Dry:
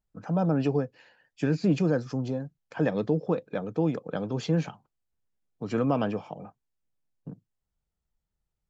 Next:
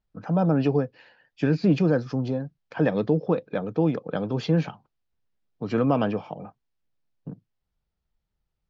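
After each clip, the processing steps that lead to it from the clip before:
low-pass filter 5,200 Hz 24 dB per octave
level +3.5 dB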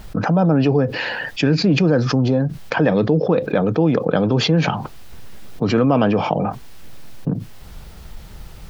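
envelope flattener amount 70%
level +3 dB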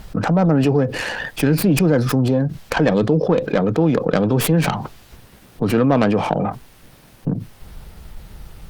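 stylus tracing distortion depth 0.27 ms
Opus 48 kbit/s 48,000 Hz

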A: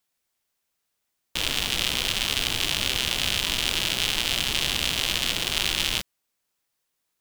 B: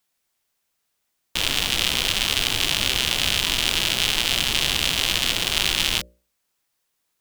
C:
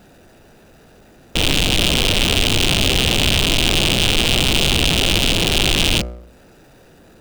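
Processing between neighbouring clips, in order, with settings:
mains-hum notches 60/120/180/240/300/360/420/480/540/600 Hz; level +3.5 dB
adaptive Wiener filter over 41 samples; power curve on the samples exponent 0.5

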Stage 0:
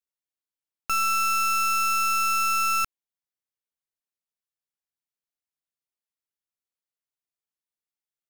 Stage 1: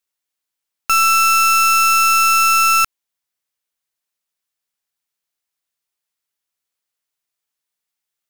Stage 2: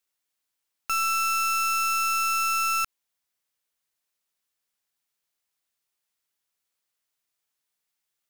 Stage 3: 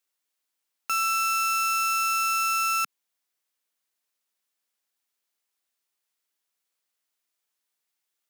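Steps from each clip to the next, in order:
tilt shelving filter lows −3.5 dB, about 650 Hz; level +8 dB
brickwall limiter −20 dBFS, peak gain reduction 11.5 dB
high-pass filter 190 Hz 24 dB per octave

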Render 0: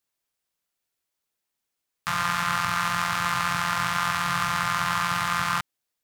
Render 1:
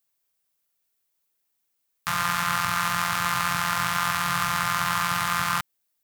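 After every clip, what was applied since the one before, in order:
high-shelf EQ 11,000 Hz +11.5 dB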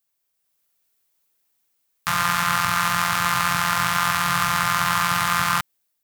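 automatic gain control gain up to 5.5 dB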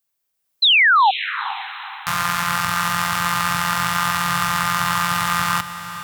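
sound drawn into the spectrogram fall, 0:00.62–0:01.11, 740–4,200 Hz −13 dBFS
feedback delay with all-pass diffusion 452 ms, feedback 43%, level −12 dB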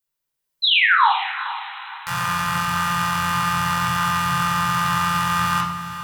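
convolution reverb RT60 0.70 s, pre-delay 16 ms, DRR −0.5 dB
level −7.5 dB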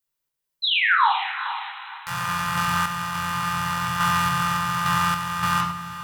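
sample-and-hold tremolo

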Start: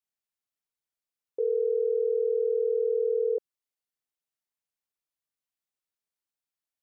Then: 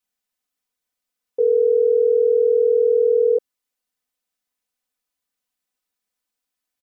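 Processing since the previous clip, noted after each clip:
comb filter 4 ms, depth 96%
level +5.5 dB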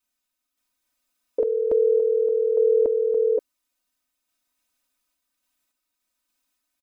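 sample-and-hold tremolo 3.5 Hz, depth 55%
comb filter 3.2 ms, depth 78%
level +6 dB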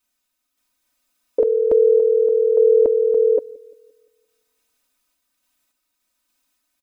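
delay with a low-pass on its return 173 ms, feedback 43%, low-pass 460 Hz, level −21.5 dB
level +5.5 dB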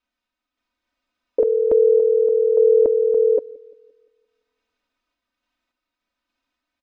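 high-frequency loss of the air 220 metres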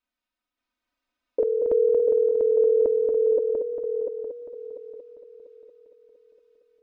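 echo machine with several playback heads 231 ms, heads first and third, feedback 51%, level −6 dB
level −5.5 dB

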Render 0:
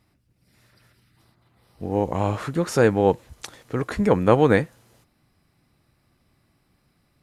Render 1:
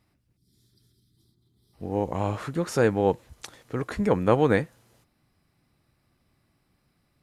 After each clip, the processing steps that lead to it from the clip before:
gain on a spectral selection 0:00.37–0:01.73, 440–3,100 Hz −19 dB
level −4 dB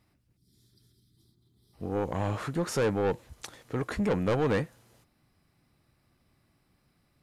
soft clipping −21.5 dBFS, distortion −8 dB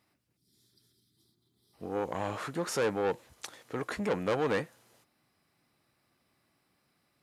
high-pass filter 370 Hz 6 dB per octave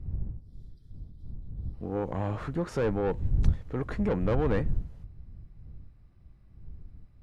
wind on the microphone 120 Hz −47 dBFS
RIAA equalisation playback
level −2 dB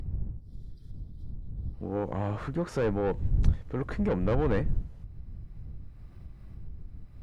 upward compression, threshold −33 dBFS

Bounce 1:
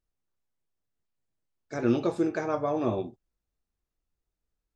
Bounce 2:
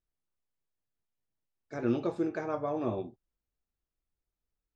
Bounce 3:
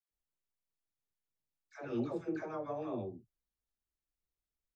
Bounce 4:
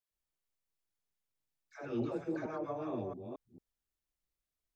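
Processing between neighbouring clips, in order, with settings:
high-shelf EQ 5,900 Hz −11 dB; level −4.5 dB
all-pass dispersion lows, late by 116 ms, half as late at 570 Hz; level −6.5 dB
delay that plays each chunk backwards 224 ms, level −6 dB

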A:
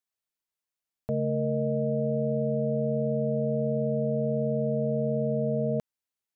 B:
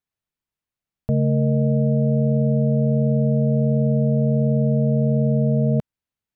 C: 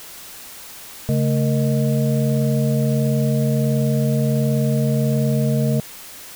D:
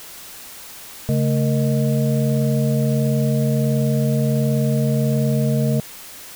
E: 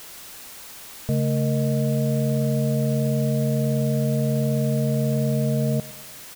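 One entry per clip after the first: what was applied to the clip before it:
bass and treble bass +11 dB, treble −7 dB; level +2.5 dB
background noise white −38 dBFS
no processing that can be heard
repeating echo 111 ms, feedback 53%, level −19 dB; level −3 dB

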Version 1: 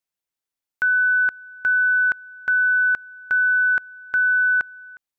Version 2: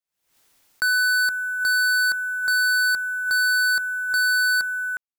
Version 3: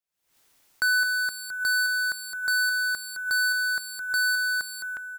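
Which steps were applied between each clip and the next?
leveller curve on the samples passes 5; background raised ahead of every attack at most 91 dB per second; level −4 dB
single-tap delay 213 ms −8.5 dB; level −2 dB

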